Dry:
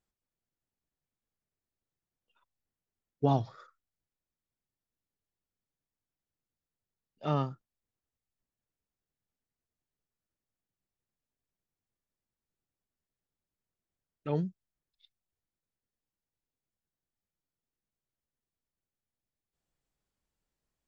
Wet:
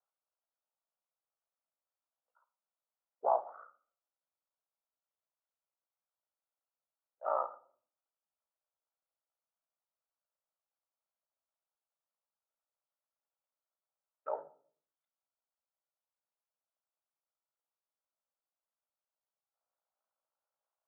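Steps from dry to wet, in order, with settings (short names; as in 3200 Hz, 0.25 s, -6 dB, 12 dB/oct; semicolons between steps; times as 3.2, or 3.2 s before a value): Chebyshev band-pass 560–1400 Hz, order 3; ring modulator 29 Hz; shoebox room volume 520 m³, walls furnished, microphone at 0.66 m; gain +4.5 dB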